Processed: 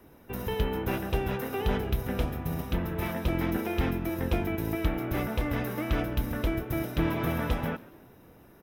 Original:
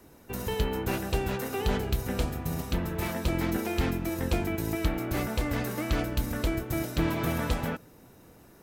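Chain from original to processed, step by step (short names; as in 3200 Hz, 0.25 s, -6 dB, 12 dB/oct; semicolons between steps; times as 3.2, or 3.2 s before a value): bell 7500 Hz -14.5 dB 0.74 oct; notch 4400 Hz, Q 5.5; on a send: frequency-shifting echo 0.14 s, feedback 44%, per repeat +88 Hz, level -21.5 dB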